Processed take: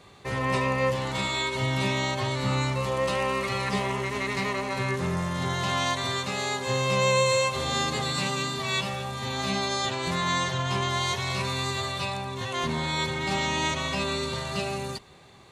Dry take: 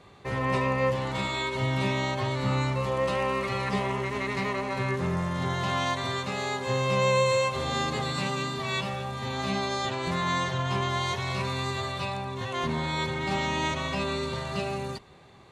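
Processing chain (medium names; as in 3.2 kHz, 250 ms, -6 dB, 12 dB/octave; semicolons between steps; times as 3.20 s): treble shelf 3.6 kHz +8.5 dB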